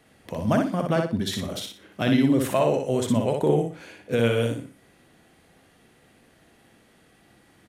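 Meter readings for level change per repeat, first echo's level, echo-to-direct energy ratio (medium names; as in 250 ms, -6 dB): -10.5 dB, -4.0 dB, -3.5 dB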